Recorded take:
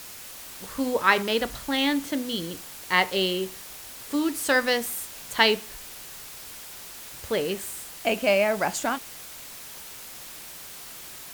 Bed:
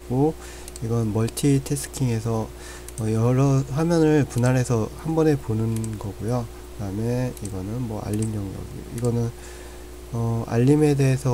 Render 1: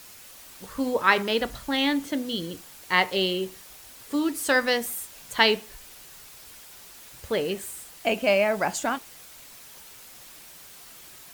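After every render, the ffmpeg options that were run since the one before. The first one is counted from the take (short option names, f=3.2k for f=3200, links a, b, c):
-af "afftdn=nr=6:nf=-42"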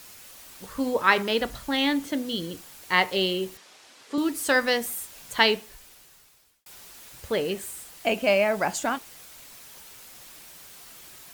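-filter_complex "[0:a]asettb=1/sr,asplit=3[a][b][c];[a]atrim=end=3.574[d];[b]atrim=start=3.57:end=4.18,asetpts=PTS-STARTPTS,afade=t=in:d=0.004:c=qsin,afade=t=out:st=0.606:d=0.004:c=qsin,highpass=250,lowpass=5.9k[e];[c]atrim=start=4.176[f];[d][e]acrossfade=d=0.004:c1=hsin:c2=qsin[g];[g][f]acrossfade=d=0.004:c1=qsin:c2=hsin,asplit=2[h][i];[h]atrim=end=6.66,asetpts=PTS-STARTPTS,afade=t=out:st=5.38:d=1.28[j];[i]atrim=start=6.66,asetpts=PTS-STARTPTS,afade=t=in:d=0.004:c=hsin[k];[j][k]concat=n=2:v=0:a=1"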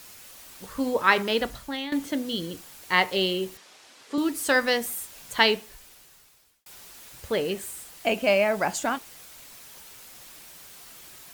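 -filter_complex "[0:a]asplit=2[a][b];[a]atrim=end=1.92,asetpts=PTS-STARTPTS,afade=t=out:st=1.45:d=0.47:silence=0.188365[c];[b]atrim=start=1.92,asetpts=PTS-STARTPTS,afade=t=in:d=0.004:c=hsin:silence=0.188365[d];[c][d]concat=n=2:v=0:a=1"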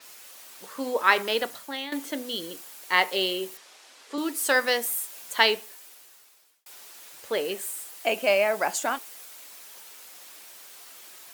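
-af "highpass=360,adynamicequalizer=threshold=0.00631:dfrequency=7800:dqfactor=0.7:tfrequency=7800:tqfactor=0.7:attack=5:release=100:ratio=0.375:range=2.5:mode=boostabove:tftype=highshelf"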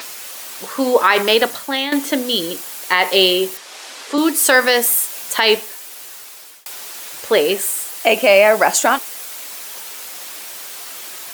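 -af "acompressor=mode=upward:threshold=-41dB:ratio=2.5,alimiter=level_in=13.5dB:limit=-1dB:release=50:level=0:latency=1"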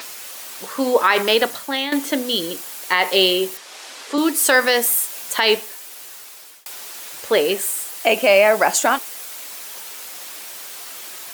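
-af "volume=-2.5dB"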